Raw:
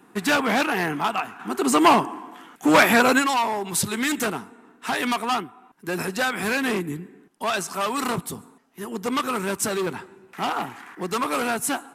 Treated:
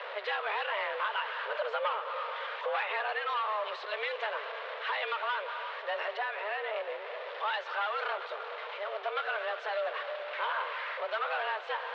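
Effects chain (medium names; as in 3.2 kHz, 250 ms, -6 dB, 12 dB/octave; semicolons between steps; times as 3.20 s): jump at every zero crossing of -26 dBFS; compression 10:1, threshold -21 dBFS, peak gain reduction 12 dB; 6.17–6.76 s: treble shelf 2.4 kHz -10 dB; on a send: multi-head delay 115 ms, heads second and third, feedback 73%, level -17 dB; on the sum: mistuned SSB +210 Hz 300–3500 Hz; trim -7 dB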